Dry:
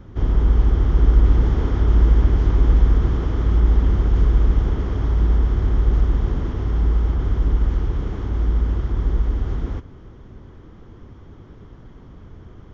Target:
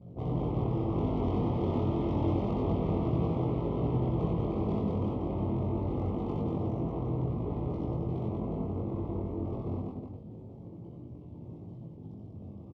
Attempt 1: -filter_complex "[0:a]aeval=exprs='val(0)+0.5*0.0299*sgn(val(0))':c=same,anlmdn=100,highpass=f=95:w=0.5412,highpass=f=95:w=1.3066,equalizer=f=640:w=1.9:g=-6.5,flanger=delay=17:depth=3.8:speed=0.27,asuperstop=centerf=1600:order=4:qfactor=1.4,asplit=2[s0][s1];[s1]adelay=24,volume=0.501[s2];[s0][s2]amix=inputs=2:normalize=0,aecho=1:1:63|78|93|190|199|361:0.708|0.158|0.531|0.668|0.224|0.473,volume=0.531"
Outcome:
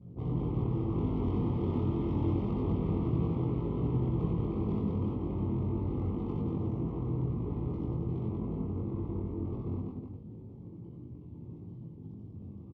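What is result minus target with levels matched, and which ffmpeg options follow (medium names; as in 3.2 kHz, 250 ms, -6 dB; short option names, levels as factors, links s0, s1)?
4 kHz band -4.0 dB; 500 Hz band -3.0 dB
-filter_complex "[0:a]aeval=exprs='val(0)+0.5*0.0299*sgn(val(0))':c=same,anlmdn=100,highpass=f=95:w=0.5412,highpass=f=95:w=1.3066,equalizer=f=640:w=1.9:g=5.5,flanger=delay=17:depth=3.8:speed=0.27,asuperstop=centerf=1600:order=4:qfactor=1.4,highshelf=f=2800:g=9,asplit=2[s0][s1];[s1]adelay=24,volume=0.501[s2];[s0][s2]amix=inputs=2:normalize=0,aecho=1:1:63|78|93|190|199|361:0.708|0.158|0.531|0.668|0.224|0.473,volume=0.531"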